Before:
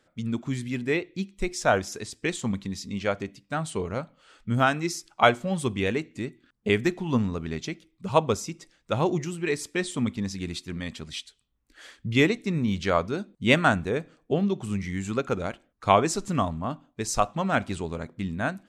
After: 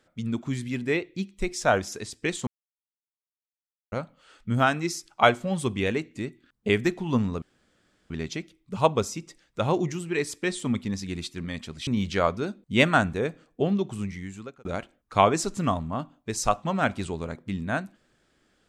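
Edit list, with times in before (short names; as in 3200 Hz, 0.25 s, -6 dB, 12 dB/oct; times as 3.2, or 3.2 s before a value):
2.47–3.92 mute
7.42 insert room tone 0.68 s
11.19–12.58 cut
14.54–15.36 fade out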